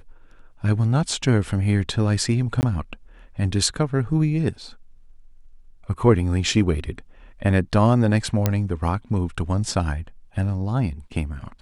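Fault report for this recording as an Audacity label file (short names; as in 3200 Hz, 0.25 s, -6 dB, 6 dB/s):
2.610000	2.630000	gap 19 ms
8.460000	8.460000	pop -5 dBFS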